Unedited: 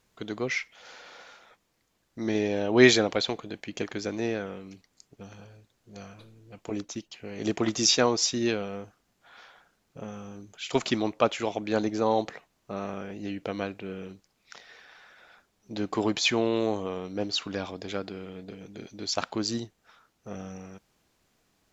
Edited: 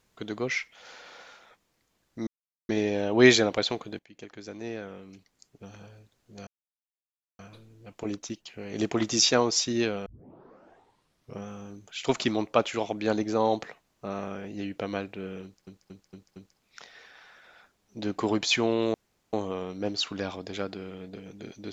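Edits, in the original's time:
0:02.27: splice in silence 0.42 s
0:03.57–0:05.40: fade in, from −18.5 dB
0:06.05: splice in silence 0.92 s
0:08.72: tape start 1.41 s
0:14.10: stutter 0.23 s, 5 plays
0:16.68: splice in room tone 0.39 s

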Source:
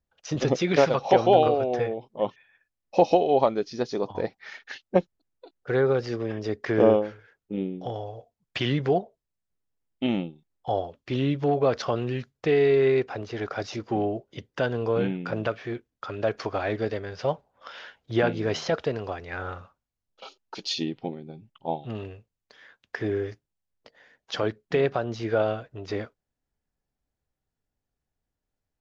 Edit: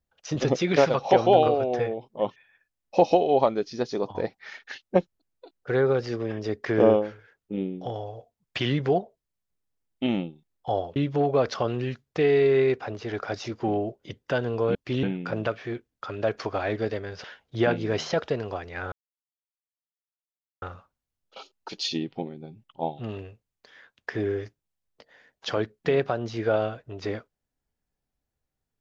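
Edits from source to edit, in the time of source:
0:10.96–0:11.24: move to 0:15.03
0:17.24–0:17.80: remove
0:19.48: splice in silence 1.70 s

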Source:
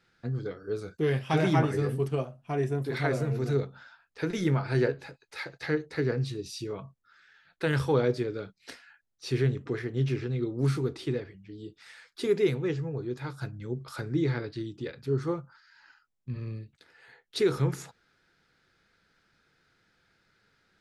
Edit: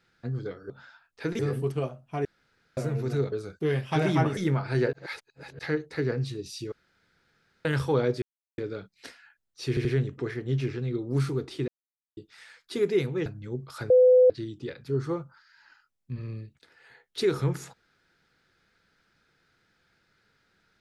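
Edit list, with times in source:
0:00.70–0:01.75: swap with 0:03.68–0:04.37
0:02.61–0:03.13: fill with room tone
0:04.93–0:05.59: reverse
0:06.72–0:07.65: fill with room tone
0:08.22: splice in silence 0.36 s
0:09.33: stutter 0.08 s, 3 plays
0:11.16–0:11.65: silence
0:12.74–0:13.44: remove
0:14.08–0:14.48: beep over 505 Hz −13.5 dBFS

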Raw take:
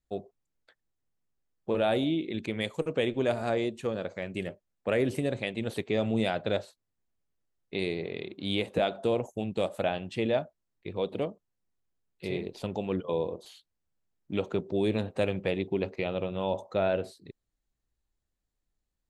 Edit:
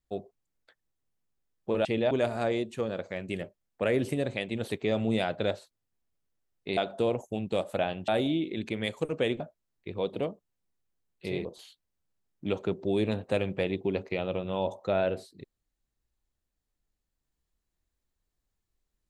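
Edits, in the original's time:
0:01.85–0:03.17: swap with 0:10.13–0:10.39
0:07.83–0:08.82: remove
0:12.44–0:13.32: remove

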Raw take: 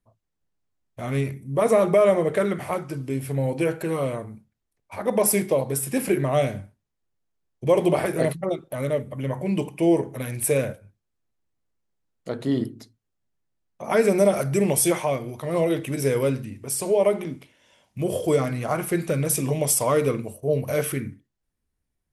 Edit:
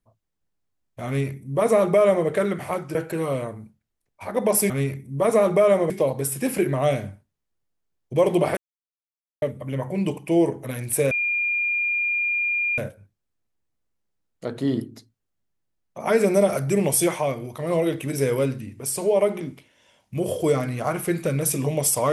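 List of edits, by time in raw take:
0:01.07–0:02.27: duplicate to 0:05.41
0:02.95–0:03.66: remove
0:08.08–0:08.93: silence
0:10.62: insert tone 2,410 Hz −20.5 dBFS 1.67 s

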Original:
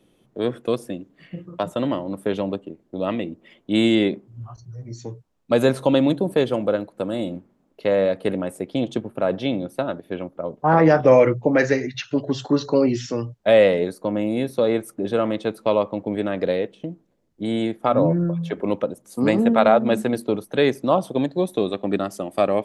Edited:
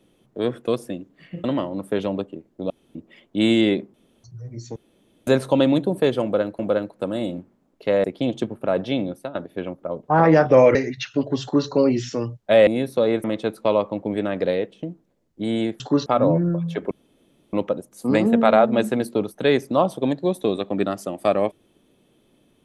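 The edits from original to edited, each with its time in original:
0:01.44–0:01.78: remove
0:03.04–0:03.29: fill with room tone
0:04.28–0:04.58: fill with room tone
0:05.10–0:05.61: fill with room tone
0:06.57–0:06.93: repeat, 2 plays
0:08.02–0:08.58: remove
0:09.62–0:09.89: fade out, to −15 dB
0:11.29–0:11.72: remove
0:12.39–0:12.65: duplicate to 0:17.81
0:13.64–0:14.28: remove
0:14.85–0:15.25: remove
0:18.66: splice in room tone 0.62 s

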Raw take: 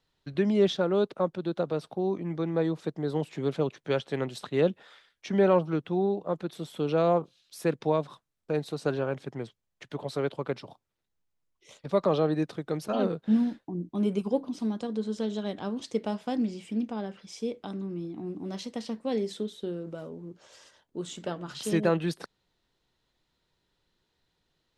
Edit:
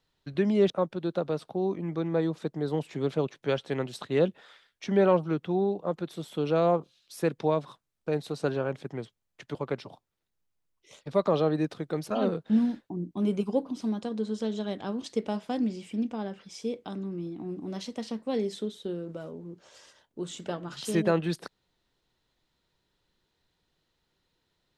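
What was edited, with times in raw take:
0:00.70–0:01.12: remove
0:09.97–0:10.33: remove

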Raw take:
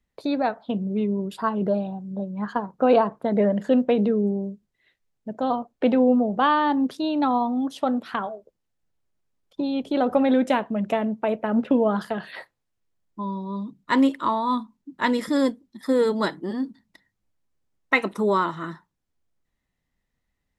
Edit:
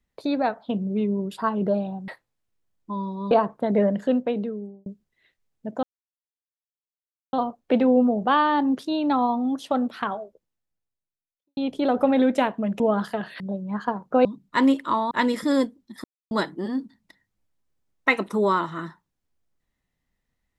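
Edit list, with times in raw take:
0:02.08–0:02.93: swap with 0:12.37–0:13.60
0:03.49–0:04.48: fade out
0:05.45: splice in silence 1.50 s
0:08.34–0:09.69: fade out quadratic
0:10.92–0:11.77: remove
0:14.46–0:14.96: remove
0:15.89–0:16.16: silence

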